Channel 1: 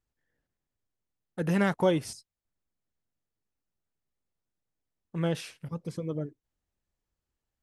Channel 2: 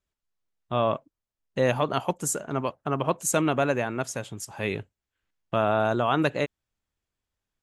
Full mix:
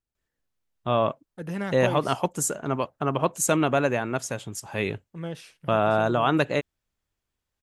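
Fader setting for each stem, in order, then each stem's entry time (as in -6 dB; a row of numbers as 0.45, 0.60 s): -5.5, +1.5 dB; 0.00, 0.15 s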